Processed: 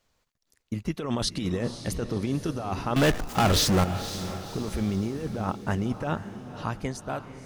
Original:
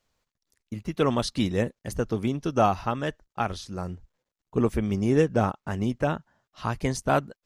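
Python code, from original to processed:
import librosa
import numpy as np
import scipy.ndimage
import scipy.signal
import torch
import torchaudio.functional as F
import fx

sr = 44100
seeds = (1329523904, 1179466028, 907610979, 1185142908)

y = fx.fade_out_tail(x, sr, length_s=1.53)
y = fx.over_compress(y, sr, threshold_db=-28.0, ratio=-1.0)
y = fx.power_curve(y, sr, exponent=0.35, at=(2.96, 3.84))
y = fx.echo_diffused(y, sr, ms=515, feedback_pct=47, wet_db=-11.5)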